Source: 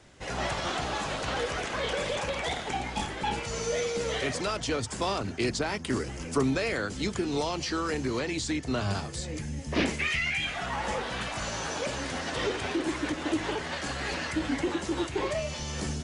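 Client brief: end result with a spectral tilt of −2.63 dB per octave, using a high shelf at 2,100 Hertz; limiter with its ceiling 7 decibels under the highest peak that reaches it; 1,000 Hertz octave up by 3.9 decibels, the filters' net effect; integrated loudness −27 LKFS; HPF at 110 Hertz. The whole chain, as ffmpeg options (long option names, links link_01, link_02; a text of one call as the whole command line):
ffmpeg -i in.wav -af "highpass=110,equalizer=frequency=1000:width_type=o:gain=3.5,highshelf=frequency=2100:gain=6.5,volume=1.5dB,alimiter=limit=-17dB:level=0:latency=1" out.wav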